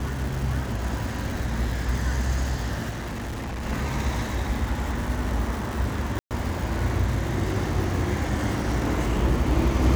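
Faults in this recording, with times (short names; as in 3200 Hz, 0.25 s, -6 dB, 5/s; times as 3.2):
crackle 430/s -31 dBFS
2.89–3.66 clipped -28.5 dBFS
6.19–6.31 gap 0.118 s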